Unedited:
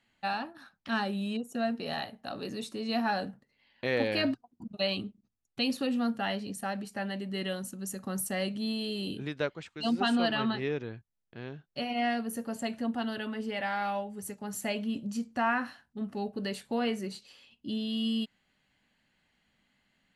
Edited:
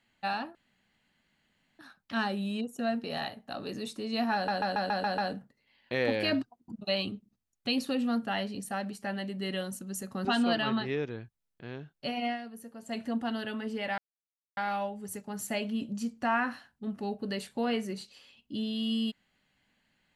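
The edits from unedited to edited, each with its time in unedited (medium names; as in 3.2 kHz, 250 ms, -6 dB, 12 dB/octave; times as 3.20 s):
0.55 s: insert room tone 1.24 s
3.10 s: stutter 0.14 s, 7 plays
8.17–9.98 s: delete
11.97–12.71 s: dip -10.5 dB, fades 0.14 s
13.71 s: insert silence 0.59 s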